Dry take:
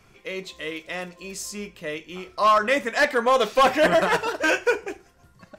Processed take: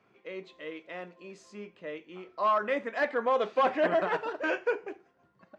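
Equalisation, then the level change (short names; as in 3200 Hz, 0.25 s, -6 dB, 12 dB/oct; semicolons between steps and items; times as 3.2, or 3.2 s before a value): HPF 230 Hz 12 dB/oct; tape spacing loss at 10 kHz 30 dB; notch 5400 Hz, Q 23; -5.0 dB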